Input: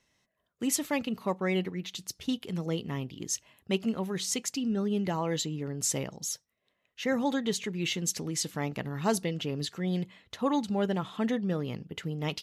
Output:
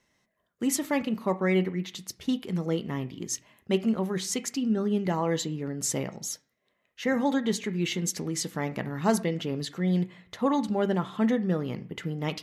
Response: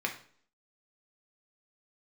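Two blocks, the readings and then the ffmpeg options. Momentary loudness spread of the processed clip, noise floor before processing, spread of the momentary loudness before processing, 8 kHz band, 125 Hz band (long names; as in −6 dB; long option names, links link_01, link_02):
8 LU, −79 dBFS, 6 LU, 0.0 dB, +3.0 dB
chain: -filter_complex "[0:a]asplit=2[link_01][link_02];[1:a]atrim=start_sample=2205,lowpass=2400[link_03];[link_02][link_03]afir=irnorm=-1:irlink=0,volume=-9dB[link_04];[link_01][link_04]amix=inputs=2:normalize=0"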